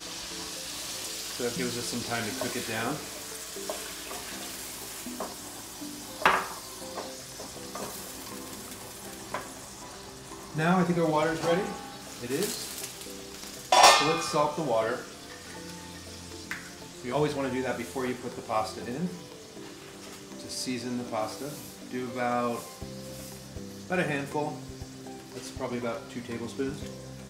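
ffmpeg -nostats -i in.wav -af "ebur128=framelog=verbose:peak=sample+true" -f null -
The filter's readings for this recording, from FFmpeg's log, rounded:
Integrated loudness:
  I:         -30.5 LUFS
  Threshold: -41.2 LUFS
Loudness range:
  LRA:        10.9 LU
  Threshold: -51.0 LUFS
  LRA low:   -36.1 LUFS
  LRA high:  -25.2 LUFS
Sample peak:
  Peak:       -8.6 dBFS
True peak:
  Peak:       -8.3 dBFS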